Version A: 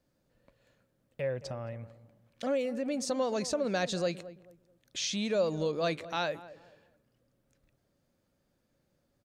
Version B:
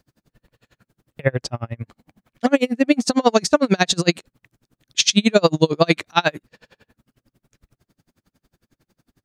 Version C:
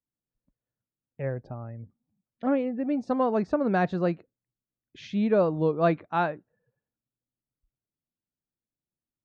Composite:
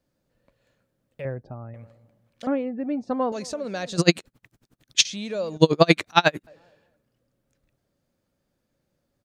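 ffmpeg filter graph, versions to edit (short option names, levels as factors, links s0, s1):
-filter_complex "[2:a]asplit=2[s0][s1];[1:a]asplit=2[s2][s3];[0:a]asplit=5[s4][s5][s6][s7][s8];[s4]atrim=end=1.252[s9];[s0]atrim=start=1.248:end=1.742[s10];[s5]atrim=start=1.738:end=2.472[s11];[s1]atrim=start=2.468:end=3.322[s12];[s6]atrim=start=3.318:end=3.972[s13];[s2]atrim=start=3.968:end=5.052[s14];[s7]atrim=start=5.048:end=5.572[s15];[s3]atrim=start=5.568:end=6.472[s16];[s8]atrim=start=6.468[s17];[s9][s10]acrossfade=d=0.004:c1=hsin:c2=hsin[s18];[s18][s11]acrossfade=d=0.004:c1=hsin:c2=hsin[s19];[s19][s12]acrossfade=d=0.004:c1=hsin:c2=hsin[s20];[s20][s13]acrossfade=d=0.004:c1=hsin:c2=hsin[s21];[s21][s14]acrossfade=d=0.004:c1=hsin:c2=hsin[s22];[s22][s15]acrossfade=d=0.004:c1=hsin:c2=hsin[s23];[s23][s16]acrossfade=d=0.004:c1=hsin:c2=hsin[s24];[s24][s17]acrossfade=d=0.004:c1=hsin:c2=hsin"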